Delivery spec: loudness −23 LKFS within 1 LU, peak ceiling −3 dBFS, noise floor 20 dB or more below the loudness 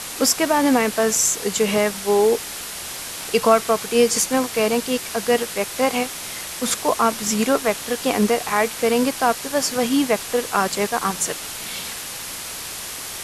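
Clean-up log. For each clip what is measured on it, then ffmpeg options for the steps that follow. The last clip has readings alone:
background noise floor −32 dBFS; target noise floor −41 dBFS; integrated loudness −20.5 LKFS; sample peak −3.0 dBFS; target loudness −23.0 LKFS
→ -af "afftdn=noise_reduction=9:noise_floor=-32"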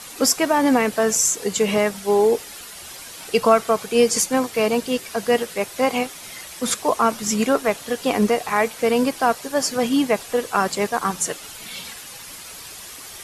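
background noise floor −38 dBFS; target noise floor −41 dBFS
→ -af "afftdn=noise_reduction=6:noise_floor=-38"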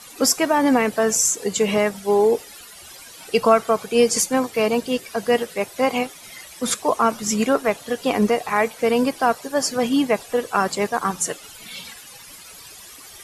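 background noise floor −42 dBFS; integrated loudness −20.5 LKFS; sample peak −3.0 dBFS; target loudness −23.0 LKFS
→ -af "volume=-2.5dB"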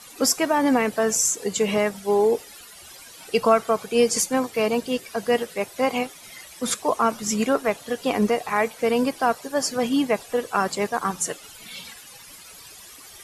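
integrated loudness −23.0 LKFS; sample peak −5.5 dBFS; background noise floor −45 dBFS

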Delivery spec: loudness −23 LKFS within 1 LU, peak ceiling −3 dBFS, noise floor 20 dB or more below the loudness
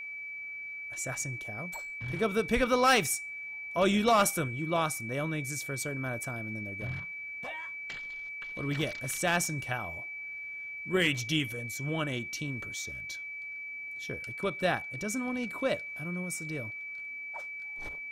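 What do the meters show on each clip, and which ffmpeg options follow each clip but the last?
interfering tone 2,300 Hz; level of the tone −38 dBFS; integrated loudness −32.0 LKFS; sample peak −16.0 dBFS; target loudness −23.0 LKFS
→ -af "bandreject=frequency=2300:width=30"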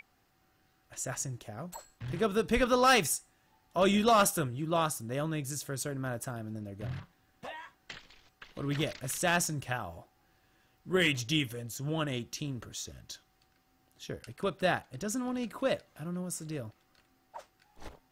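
interfering tone none found; integrated loudness −31.5 LKFS; sample peak −16.0 dBFS; target loudness −23.0 LKFS
→ -af "volume=8.5dB"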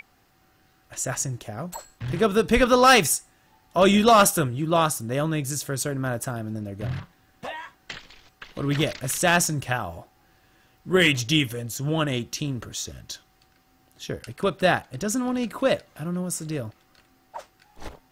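integrated loudness −23.0 LKFS; sample peak −7.5 dBFS; background noise floor −62 dBFS

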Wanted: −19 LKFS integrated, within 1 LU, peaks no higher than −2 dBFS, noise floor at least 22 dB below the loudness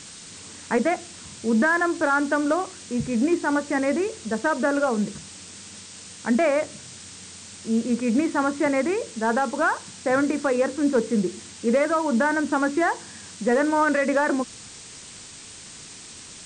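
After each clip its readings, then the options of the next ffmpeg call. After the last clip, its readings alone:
background noise floor −43 dBFS; target noise floor −46 dBFS; integrated loudness −23.5 LKFS; sample peak −12.5 dBFS; target loudness −19.0 LKFS
→ -af "afftdn=noise_reduction=6:noise_floor=-43"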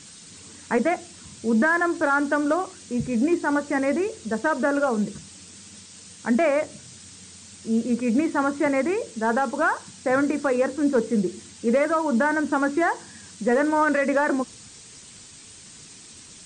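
background noise floor −46 dBFS; integrated loudness −23.5 LKFS; sample peak −12.5 dBFS; target loudness −19.0 LKFS
→ -af "volume=4.5dB"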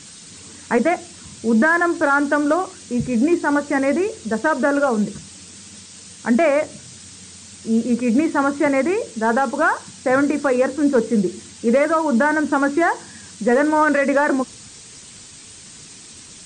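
integrated loudness −19.0 LKFS; sample peak −8.0 dBFS; background noise floor −41 dBFS

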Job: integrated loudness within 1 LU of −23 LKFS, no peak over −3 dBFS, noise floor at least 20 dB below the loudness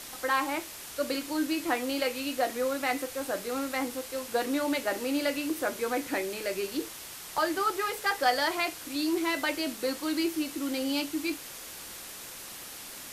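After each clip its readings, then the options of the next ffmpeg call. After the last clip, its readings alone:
background noise floor −44 dBFS; target noise floor −51 dBFS; integrated loudness −31.0 LKFS; sample peak −13.5 dBFS; target loudness −23.0 LKFS
→ -af "afftdn=noise_reduction=7:noise_floor=-44"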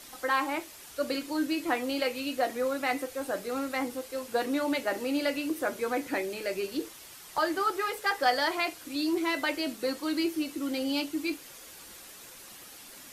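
background noise floor −49 dBFS; target noise floor −51 dBFS
→ -af "afftdn=noise_reduction=6:noise_floor=-49"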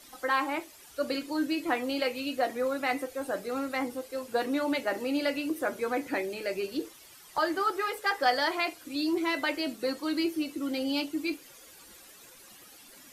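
background noise floor −53 dBFS; integrated loudness −30.5 LKFS; sample peak −13.5 dBFS; target loudness −23.0 LKFS
→ -af "volume=7.5dB"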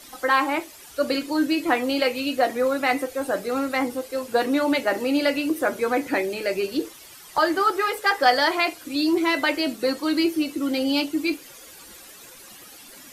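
integrated loudness −23.0 LKFS; sample peak −6.0 dBFS; background noise floor −45 dBFS

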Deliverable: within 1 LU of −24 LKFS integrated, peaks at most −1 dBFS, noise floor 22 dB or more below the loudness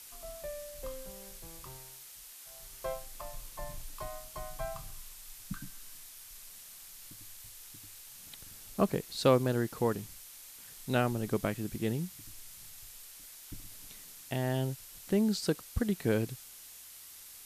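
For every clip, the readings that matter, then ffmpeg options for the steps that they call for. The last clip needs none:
background noise floor −51 dBFS; target noise floor −57 dBFS; integrated loudness −34.5 LKFS; sample peak −12.5 dBFS; target loudness −24.0 LKFS
→ -af "afftdn=noise_reduction=6:noise_floor=-51"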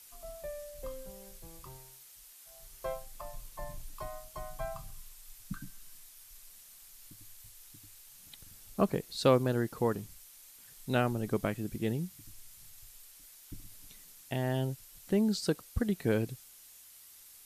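background noise floor −55 dBFS; target noise floor −56 dBFS
→ -af "afftdn=noise_reduction=6:noise_floor=-55"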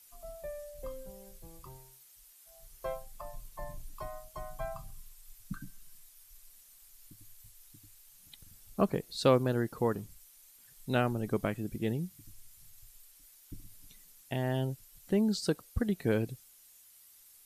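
background noise floor −59 dBFS; integrated loudness −34.0 LKFS; sample peak −12.5 dBFS; target loudness −24.0 LKFS
→ -af "volume=10dB"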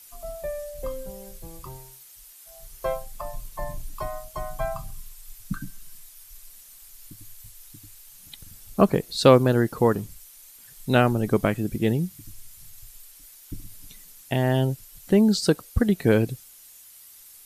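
integrated loudness −24.0 LKFS; sample peak −2.5 dBFS; background noise floor −49 dBFS

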